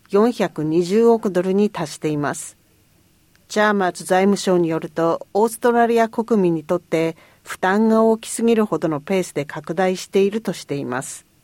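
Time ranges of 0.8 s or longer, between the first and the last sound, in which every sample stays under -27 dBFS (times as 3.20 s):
2.48–3.52 s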